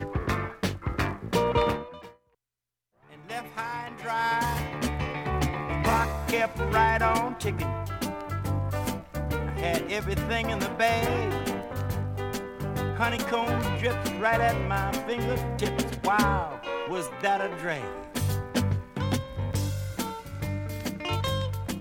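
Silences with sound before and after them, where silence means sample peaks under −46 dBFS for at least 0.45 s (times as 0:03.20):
0:02.13–0:03.07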